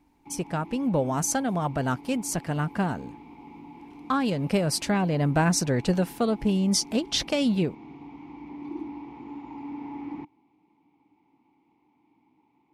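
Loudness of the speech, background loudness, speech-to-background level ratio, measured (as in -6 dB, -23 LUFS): -26.0 LUFS, -43.0 LUFS, 17.0 dB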